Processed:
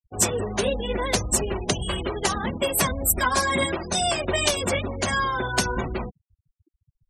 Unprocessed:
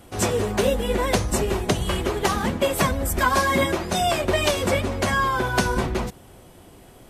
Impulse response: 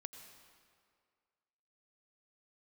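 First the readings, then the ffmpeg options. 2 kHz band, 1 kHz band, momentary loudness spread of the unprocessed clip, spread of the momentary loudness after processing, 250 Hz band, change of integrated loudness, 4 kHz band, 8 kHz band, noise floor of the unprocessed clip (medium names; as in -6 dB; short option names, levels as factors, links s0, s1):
-2.0 dB, -3.0 dB, 3 LU, 5 LU, -4.0 dB, -1.5 dB, +1.0 dB, +4.5 dB, -48 dBFS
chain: -af "afftfilt=real='re*gte(hypot(re,im),0.0398)':imag='im*gte(hypot(re,im),0.0398)':win_size=1024:overlap=0.75,crystalizer=i=3:c=0,volume=0.631"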